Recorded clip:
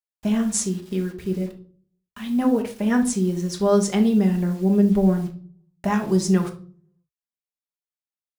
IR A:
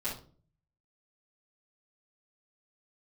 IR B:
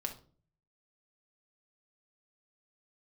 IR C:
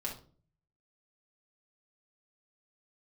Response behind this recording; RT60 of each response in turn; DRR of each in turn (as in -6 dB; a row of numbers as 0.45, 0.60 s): B; 0.40, 0.45, 0.40 s; -11.0, 3.0, -3.0 dB